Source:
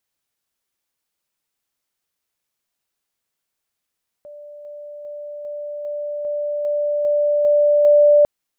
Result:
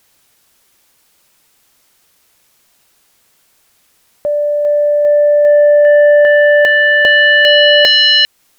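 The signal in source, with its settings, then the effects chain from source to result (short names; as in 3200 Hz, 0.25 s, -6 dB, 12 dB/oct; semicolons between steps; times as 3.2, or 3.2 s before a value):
level ladder 588 Hz -35.5 dBFS, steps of 3 dB, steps 10, 0.40 s 0.00 s
in parallel at +1.5 dB: compressor 6:1, threshold -22 dBFS; on the sum: sine folder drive 14 dB, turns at -5 dBFS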